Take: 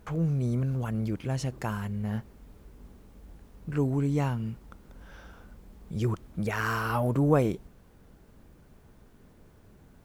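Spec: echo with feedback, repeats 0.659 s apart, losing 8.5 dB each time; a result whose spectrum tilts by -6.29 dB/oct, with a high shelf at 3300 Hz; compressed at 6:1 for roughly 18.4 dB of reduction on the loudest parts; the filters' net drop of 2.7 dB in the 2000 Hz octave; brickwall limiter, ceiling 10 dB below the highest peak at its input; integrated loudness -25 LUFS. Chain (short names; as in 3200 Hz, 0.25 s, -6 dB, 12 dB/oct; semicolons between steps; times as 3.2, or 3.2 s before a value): bell 2000 Hz -6.5 dB; high shelf 3300 Hz +8.5 dB; compressor 6:1, threshold -38 dBFS; limiter -34 dBFS; feedback echo 0.659 s, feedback 38%, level -8.5 dB; gain +20 dB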